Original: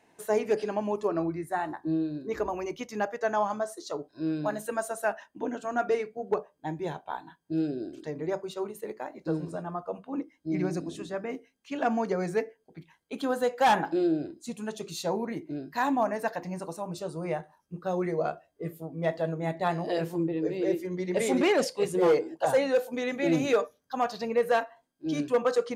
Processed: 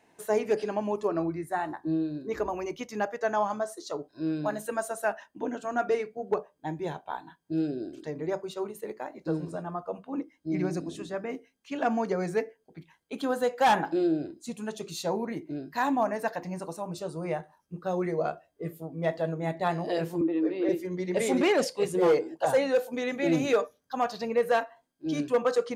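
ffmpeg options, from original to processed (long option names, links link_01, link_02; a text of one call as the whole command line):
ffmpeg -i in.wav -filter_complex "[0:a]asettb=1/sr,asplit=3[link_01][link_02][link_03];[link_01]atrim=end=20.214[link_04];[link_02]atrim=start=20.21:end=20.69,asetpts=PTS-STARTPTS,afade=type=in:duration=0.004:curve=qsin,afade=type=out:start_time=0.476:duration=0.004:curve=qsin,highpass=frequency=240:width=0.5412,highpass=frequency=240:width=1.3066,equalizer=frequency=300:width_type=q:width=4:gain=7,equalizer=frequency=450:width_type=q:width=4:gain=-5,equalizer=frequency=1200:width_type=q:width=4:gain=9,lowpass=frequency=4200:width=0.5412,lowpass=frequency=4200:width=1.3066[link_05];[link_03]atrim=start=20.686[link_06];[link_04][link_05]acrossfade=duration=0.004:curve1=hsin:curve2=qsin[link_07];[link_07][link_06]acrossfade=duration=0.004:curve1=qsin:curve2=hsin" out.wav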